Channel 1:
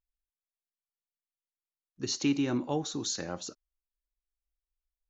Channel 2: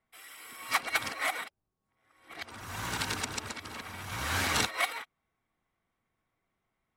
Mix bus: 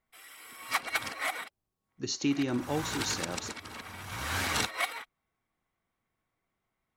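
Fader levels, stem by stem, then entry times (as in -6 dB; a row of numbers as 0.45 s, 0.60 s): -1.0 dB, -1.5 dB; 0.00 s, 0.00 s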